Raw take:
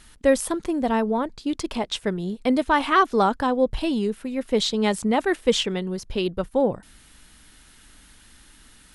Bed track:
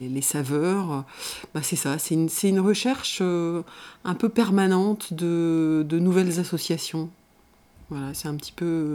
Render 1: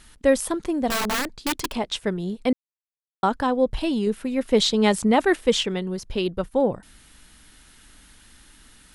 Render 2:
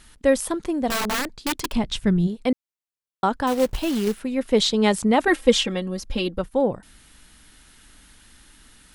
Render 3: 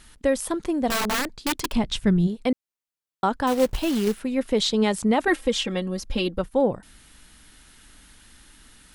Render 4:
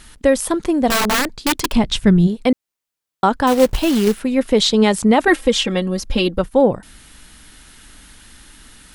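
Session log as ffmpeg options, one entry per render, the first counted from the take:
-filter_complex "[0:a]asettb=1/sr,asplit=3[a][b][c];[a]atrim=end=0.904[d];[b]atrim=start=0.9:end=1.75,asetpts=PTS-STARTPTS,afade=t=in:d=0.004:c=qsin,afade=t=out:st=0.846:d=0.004:c=qsin,aeval=exprs='(mod(9.44*val(0)+1,2)-1)/9.44':c=same[e];[c]atrim=start=1.746[f];[d][e]acrossfade=d=0.004:c1=hsin:c2=qsin[g];[g][f]acrossfade=d=0.004:c1=qsin:c2=hsin,asplit=5[h][i][j][k][l];[h]atrim=end=2.53,asetpts=PTS-STARTPTS,afade=t=out:st=2.526:d=0.004:c=hsin[m];[i]atrim=start=2.53:end=3.23,asetpts=PTS-STARTPTS,volume=0[n];[j]atrim=start=3.23:end=4.072,asetpts=PTS-STARTPTS,afade=t=in:d=0.004:c=hsin[o];[k]atrim=start=4.068:end=5.462,asetpts=PTS-STARTPTS,volume=3dB[p];[l]atrim=start=5.458[q];[m][n][o]concat=n=3:v=0:a=1[r];[r][p]acrossfade=d=0.004:c1=hsin:c2=hsin[s];[s][q]acrossfade=d=0.004:c1=hsin:c2=hsin"
-filter_complex "[0:a]asplit=3[a][b][c];[a]afade=t=out:st=1.73:d=0.02[d];[b]asubboost=boost=10.5:cutoff=190,afade=t=in:st=1.73:d=0.02,afade=t=out:st=2.26:d=0.02[e];[c]afade=t=in:st=2.26:d=0.02[f];[d][e][f]amix=inputs=3:normalize=0,asettb=1/sr,asplit=3[g][h][i];[g]atrim=end=3.474[j];[h]atrim=start=3.47:end=4.2,asetpts=PTS-STARTPTS,afade=t=in:d=0.004:c=qsin,afade=t=out:st=0.726:d=0.004:c=qsin,acrusher=bits=3:mode=log:mix=0:aa=0.000001[k];[i]atrim=start=4.196[l];[j][k]acrossfade=d=0.004:c1=hsin:c2=qsin[m];[m][l]acrossfade=d=0.004:c1=qsin:c2=hsin,asettb=1/sr,asplit=3[n][o][p];[n]atrim=end=5.274[q];[o]atrim=start=5.27:end=6.39,asetpts=PTS-STARTPTS,afade=t=in:d=0.004:c=qsin,afade=t=out:st=1.116:d=0.004:c=qsin,aecho=1:1:3.7:0.88,atrim=end_sample=49392[r];[p]atrim=start=6.386[s];[q][r]acrossfade=d=0.004:c1=hsin:c2=qsin[t];[t][s]acrossfade=d=0.004:c1=qsin:c2=hsin"
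-af "alimiter=limit=-11dB:level=0:latency=1:release=284"
-af "volume=7.5dB"

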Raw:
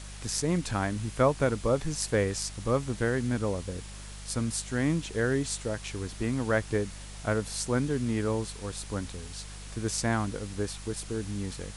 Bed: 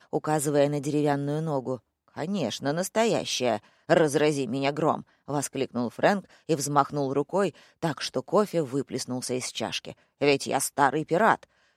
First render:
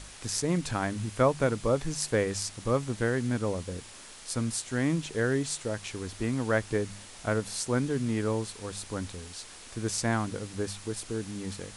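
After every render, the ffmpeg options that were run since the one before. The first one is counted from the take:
-af "bandreject=f=50:t=h:w=4,bandreject=f=100:t=h:w=4,bandreject=f=150:t=h:w=4,bandreject=f=200:t=h:w=4"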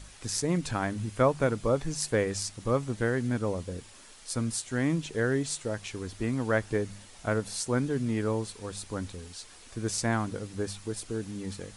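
-af "afftdn=nr=6:nf=-48"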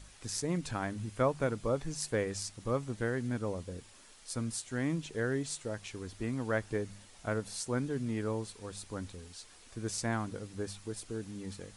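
-af "volume=-5.5dB"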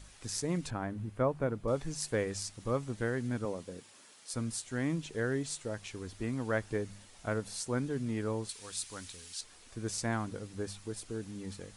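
-filter_complex "[0:a]asettb=1/sr,asplit=3[a][b][c];[a]atrim=end=0.704[d];[b]atrim=start=0.7:end=1.68,asetpts=PTS-STARTPTS,afade=t=in:d=0.004:c=qsin,afade=t=out:st=0.976:d=0.004:c=qsin,equalizer=f=6.7k:t=o:w=2.8:g=-13.5[e];[c]atrim=start=1.676[f];[d][e]acrossfade=d=0.004:c1=hsin:c2=qsin[g];[g][f]acrossfade=d=0.004:c1=qsin:c2=hsin,asettb=1/sr,asplit=3[h][i][j];[h]atrim=end=3.454[k];[i]atrim=start=3.45:end=4.34,asetpts=PTS-STARTPTS,afade=t=in:d=0.004:c=qsin,afade=t=out:st=0.886:d=0.004:c=qsin,highpass=160[l];[j]atrim=start=4.336[m];[k][l]acrossfade=d=0.004:c1=hsin:c2=qsin[n];[n][m]acrossfade=d=0.004:c1=qsin:c2=hsin,asettb=1/sr,asplit=3[o][p][q];[o]atrim=end=8.494[r];[p]atrim=start=8.49:end=9.41,asetpts=PTS-STARTPTS,afade=t=in:d=0.004:c=qsin,afade=t=out:st=0.916:d=0.004:c=qsin,tiltshelf=f=1.3k:g=-9[s];[q]atrim=start=9.406[t];[r][s]acrossfade=d=0.004:c1=hsin:c2=qsin[u];[u][t]acrossfade=d=0.004:c1=qsin:c2=hsin"

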